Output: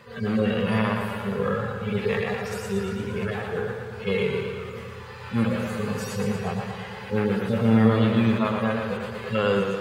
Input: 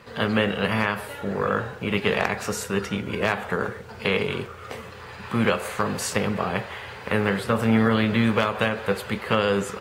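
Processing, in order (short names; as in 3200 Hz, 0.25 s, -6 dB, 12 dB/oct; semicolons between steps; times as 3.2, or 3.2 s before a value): median-filter separation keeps harmonic; warbling echo 0.117 s, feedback 67%, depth 59 cents, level -6 dB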